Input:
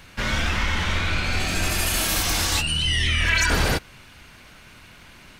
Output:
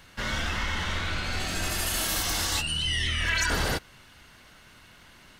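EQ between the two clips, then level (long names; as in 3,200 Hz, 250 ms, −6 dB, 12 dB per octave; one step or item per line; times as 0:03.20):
low-shelf EQ 320 Hz −3 dB
notch filter 2,400 Hz, Q 9.2
−4.5 dB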